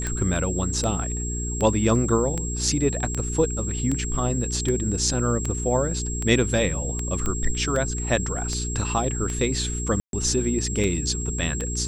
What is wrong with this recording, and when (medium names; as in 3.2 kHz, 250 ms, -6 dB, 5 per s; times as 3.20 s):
hum 60 Hz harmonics 7 -29 dBFS
tick 78 rpm -14 dBFS
whine 7.6 kHz -31 dBFS
7.26 s: pop -14 dBFS
10.00–10.13 s: dropout 132 ms